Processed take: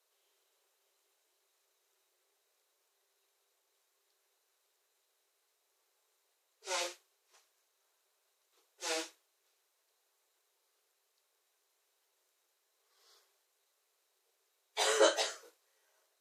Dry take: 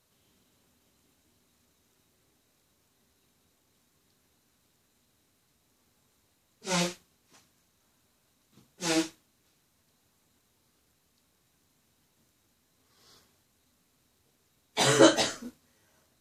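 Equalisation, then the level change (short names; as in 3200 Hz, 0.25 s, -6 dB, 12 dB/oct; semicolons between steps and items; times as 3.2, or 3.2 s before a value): steep high-pass 370 Hz 72 dB/oct; -6.5 dB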